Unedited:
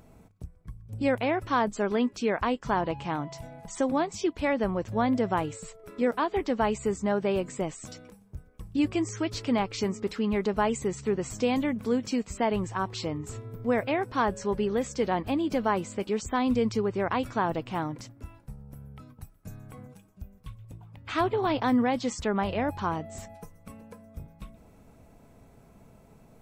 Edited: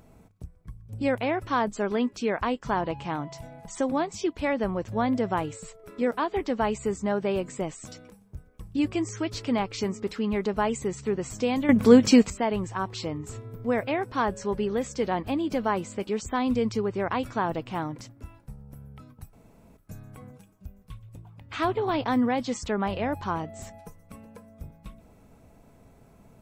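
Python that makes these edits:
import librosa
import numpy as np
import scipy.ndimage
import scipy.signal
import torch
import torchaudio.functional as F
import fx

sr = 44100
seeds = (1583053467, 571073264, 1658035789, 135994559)

y = fx.edit(x, sr, fx.clip_gain(start_s=11.69, length_s=0.61, db=12.0),
    fx.insert_room_tone(at_s=19.33, length_s=0.44), tone=tone)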